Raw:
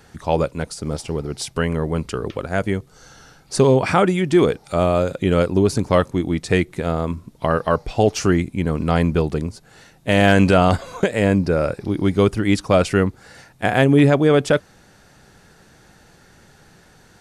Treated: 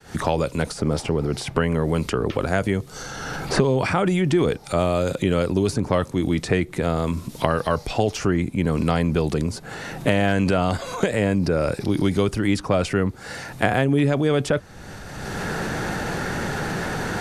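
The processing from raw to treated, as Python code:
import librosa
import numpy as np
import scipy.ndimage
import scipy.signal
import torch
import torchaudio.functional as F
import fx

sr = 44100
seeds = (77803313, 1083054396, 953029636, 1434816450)

y = fx.fade_in_head(x, sr, length_s=0.7)
y = fx.transient(y, sr, attack_db=-1, sustain_db=6)
y = fx.band_squash(y, sr, depth_pct=100)
y = F.gain(torch.from_numpy(y), -4.0).numpy()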